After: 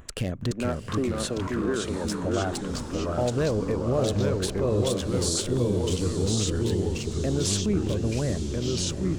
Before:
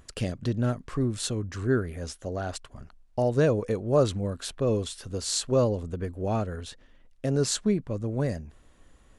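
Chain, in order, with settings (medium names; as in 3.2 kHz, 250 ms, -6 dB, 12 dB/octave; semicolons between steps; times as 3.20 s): local Wiener filter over 9 samples; 0.51–2.05 s: three-band isolator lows -24 dB, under 230 Hz, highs -12 dB, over 2.5 kHz; 5.27–6.53 s: time-frequency box 500–3000 Hz -18 dB; treble shelf 4.6 kHz +7.5 dB; in parallel at +1.5 dB: compression, threshold -35 dBFS, peak gain reduction 17 dB; on the sum: peak limiter -18 dBFS, peak gain reduction 11.5 dB; on a send: echo that smears into a reverb 763 ms, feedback 42%, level -11 dB; on the sum: ever faster or slower copies 413 ms, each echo -2 st, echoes 3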